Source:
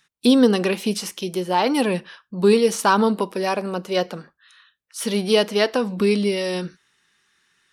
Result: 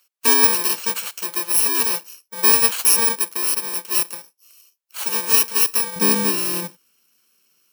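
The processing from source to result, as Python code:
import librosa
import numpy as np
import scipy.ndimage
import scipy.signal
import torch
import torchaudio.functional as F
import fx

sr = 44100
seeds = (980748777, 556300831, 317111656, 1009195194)

y = fx.bit_reversed(x, sr, seeds[0], block=64)
y = fx.highpass(y, sr, hz=fx.steps((0.0, 560.0), (5.96, 210.0)), slope=12)
y = y * librosa.db_to_amplitude(2.0)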